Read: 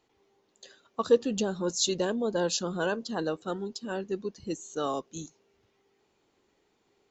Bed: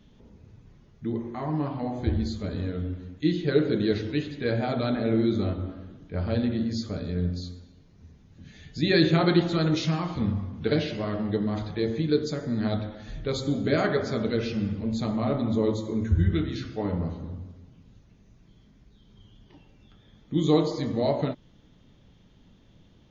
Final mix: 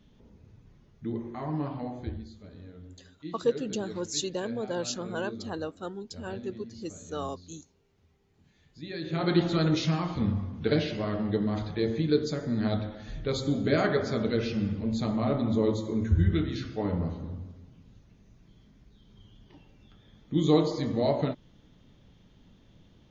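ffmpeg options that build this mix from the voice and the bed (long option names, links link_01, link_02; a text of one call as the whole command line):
ffmpeg -i stem1.wav -i stem2.wav -filter_complex "[0:a]adelay=2350,volume=-4dB[link_01];[1:a]volume=12dB,afade=type=out:start_time=1.74:duration=0.52:silence=0.223872,afade=type=in:start_time=9.04:duration=0.41:silence=0.16788[link_02];[link_01][link_02]amix=inputs=2:normalize=0" out.wav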